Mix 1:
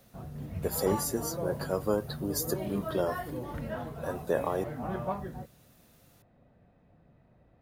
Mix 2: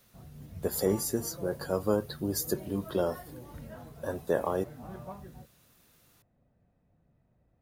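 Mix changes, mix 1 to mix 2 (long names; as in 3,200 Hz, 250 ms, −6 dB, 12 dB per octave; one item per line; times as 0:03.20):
background −11.0 dB
master: add low-shelf EQ 190 Hz +6 dB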